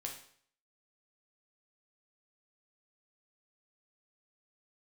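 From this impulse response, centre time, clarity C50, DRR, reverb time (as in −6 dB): 24 ms, 7.0 dB, 0.5 dB, 0.55 s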